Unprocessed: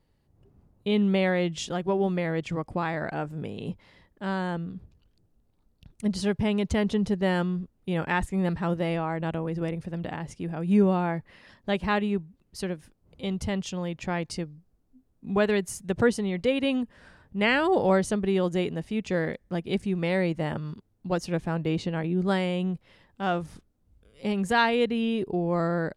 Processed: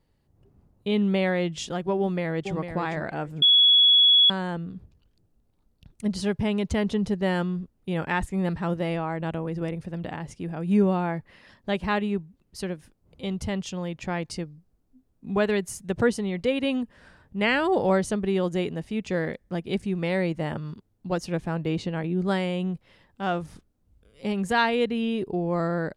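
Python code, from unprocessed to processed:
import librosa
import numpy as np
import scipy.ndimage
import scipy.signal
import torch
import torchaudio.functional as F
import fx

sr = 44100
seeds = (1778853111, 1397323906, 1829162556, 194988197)

y = fx.echo_throw(x, sr, start_s=2.0, length_s=0.57, ms=450, feedback_pct=15, wet_db=-8.0)
y = fx.edit(y, sr, fx.bleep(start_s=3.42, length_s=0.88, hz=3370.0, db=-13.5), tone=tone)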